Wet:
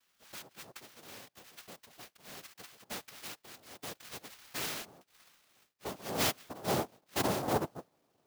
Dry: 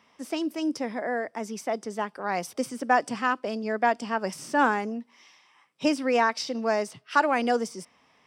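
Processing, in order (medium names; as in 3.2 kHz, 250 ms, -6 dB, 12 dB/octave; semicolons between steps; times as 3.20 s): band-pass sweep 3.9 kHz -> 490 Hz, 3.75–7.58 s; noise-vocoded speech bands 2; in parallel at -4.5 dB: saturation -33.5 dBFS, distortion -4 dB; on the sum: peaking EQ 960 Hz -3 dB 0.24 oct; sampling jitter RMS 0.031 ms; trim -5 dB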